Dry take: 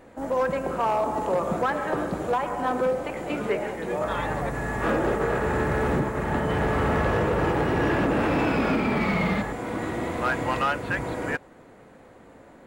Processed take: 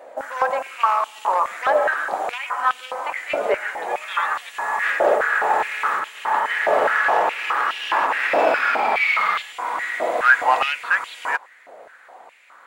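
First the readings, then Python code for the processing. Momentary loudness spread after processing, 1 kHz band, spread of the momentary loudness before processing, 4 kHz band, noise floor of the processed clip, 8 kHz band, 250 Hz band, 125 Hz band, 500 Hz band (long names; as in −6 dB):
8 LU, +7.5 dB, 6 LU, +8.0 dB, −48 dBFS, +4.0 dB, −14.5 dB, below −25 dB, +1.5 dB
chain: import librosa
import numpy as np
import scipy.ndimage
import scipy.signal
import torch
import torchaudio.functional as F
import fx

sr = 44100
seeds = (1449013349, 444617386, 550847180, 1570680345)

y = fx.filter_held_highpass(x, sr, hz=4.8, low_hz=620.0, high_hz=3000.0)
y = y * 10.0 ** (3.5 / 20.0)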